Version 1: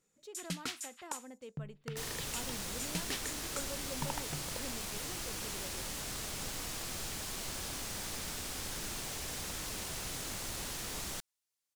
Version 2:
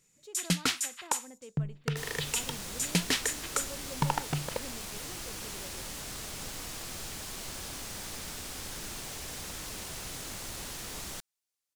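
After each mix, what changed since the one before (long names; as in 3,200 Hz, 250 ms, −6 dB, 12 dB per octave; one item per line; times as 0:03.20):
first sound +11.0 dB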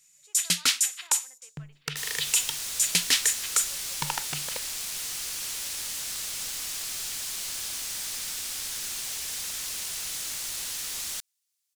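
speech: add band-pass filter 780–2,200 Hz
master: add tilt shelving filter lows −9.5 dB, about 1,300 Hz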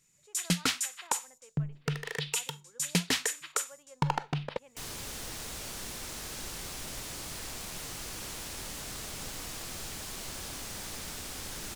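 second sound: entry +2.80 s
master: add tilt shelving filter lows +9.5 dB, about 1,300 Hz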